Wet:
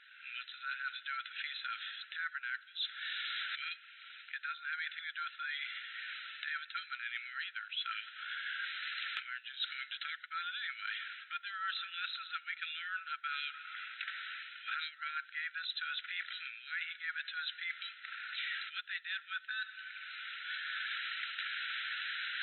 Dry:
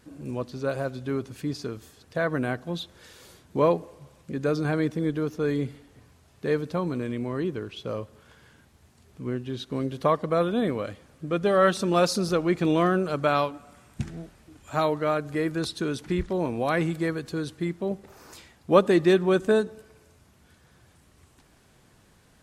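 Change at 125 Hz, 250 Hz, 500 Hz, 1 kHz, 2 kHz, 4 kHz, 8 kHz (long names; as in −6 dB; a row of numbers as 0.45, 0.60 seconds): below −40 dB, below −40 dB, below −40 dB, −13.5 dB, −1.0 dB, +0.5 dB, below −35 dB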